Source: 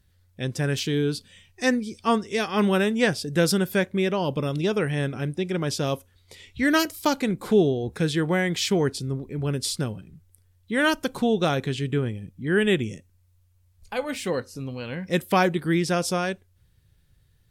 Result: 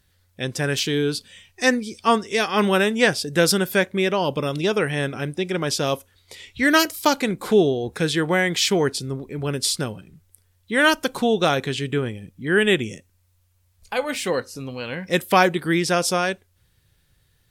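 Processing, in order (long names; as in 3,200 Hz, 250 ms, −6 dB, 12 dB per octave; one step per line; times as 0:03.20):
low-shelf EQ 290 Hz −9 dB
level +6 dB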